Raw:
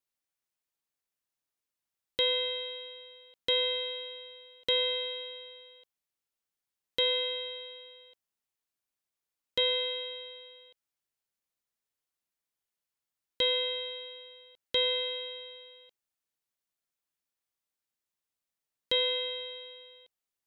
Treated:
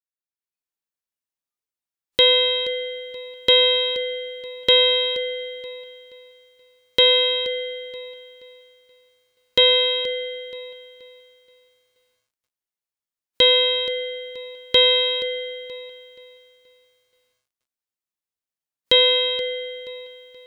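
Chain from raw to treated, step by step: spectral noise reduction 17 dB; AGC gain up to 10.5 dB; lo-fi delay 0.477 s, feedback 35%, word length 10-bit, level -13.5 dB; gain +2.5 dB

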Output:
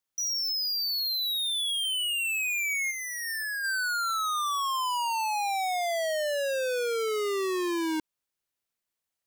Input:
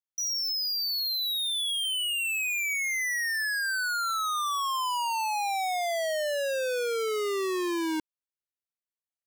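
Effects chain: 2.9–3.63 bell 980 Hz -> 4900 Hz -10 dB 2.5 oct; limiter -37 dBFS, peak gain reduction 9.5 dB; gain +8.5 dB

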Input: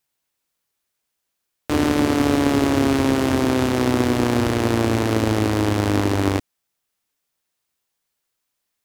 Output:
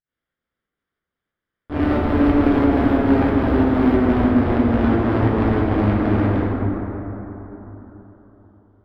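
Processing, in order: minimum comb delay 0.58 ms; 1.81–4.2 high shelf 10000 Hz +8.5 dB; pump 91 bpm, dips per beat 2, -22 dB, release 0.165 s; air absorption 440 m; plate-style reverb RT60 4 s, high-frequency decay 0.35×, DRR -6 dB

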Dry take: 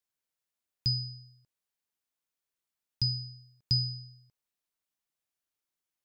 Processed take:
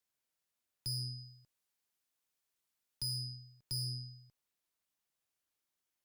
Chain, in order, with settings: 1.18–3.36 high shelf 2600 Hz +2.5 dB; tube stage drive 38 dB, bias 0.4; gain +2.5 dB

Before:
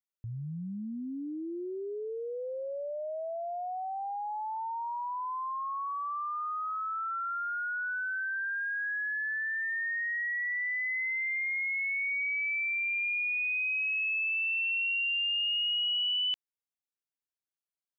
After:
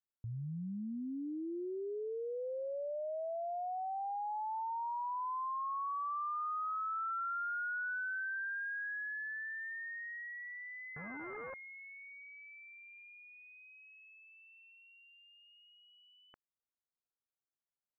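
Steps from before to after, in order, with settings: 10.96–11.54 CVSD 16 kbps; steep low-pass 1600 Hz 36 dB/oct; gain -3 dB

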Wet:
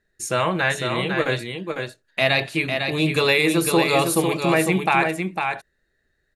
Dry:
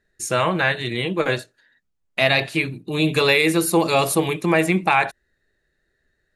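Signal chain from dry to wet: echo 0.502 s -5.5 dB; gain -1.5 dB

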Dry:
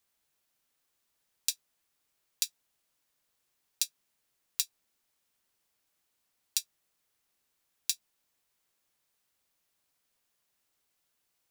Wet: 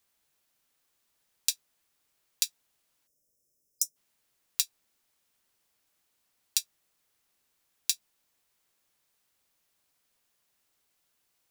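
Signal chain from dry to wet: spectral gain 3.07–3.97, 650–5000 Hz -25 dB; gain +3 dB

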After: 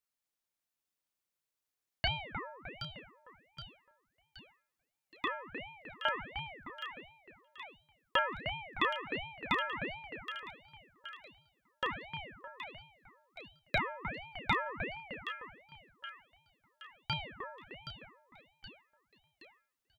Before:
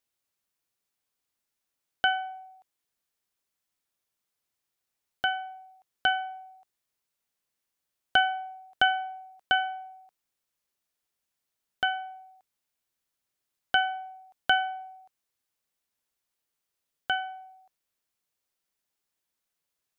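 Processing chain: doubler 34 ms -5 dB; split-band echo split 1500 Hz, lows 0.306 s, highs 0.772 s, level -7 dB; ring modulator with a swept carrier 900 Hz, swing 85%, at 1.4 Hz; gain -5 dB

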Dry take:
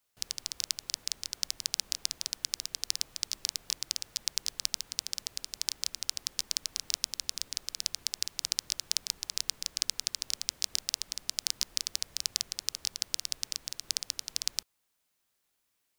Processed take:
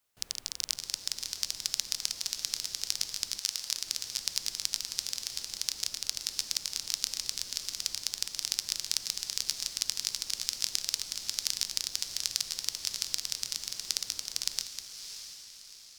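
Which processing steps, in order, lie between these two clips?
reverse delay 0.144 s, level -8 dB; 3.38–3.84 HPF 1000 Hz -> 290 Hz; on a send: diffused feedback echo 0.655 s, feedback 46%, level -9 dB

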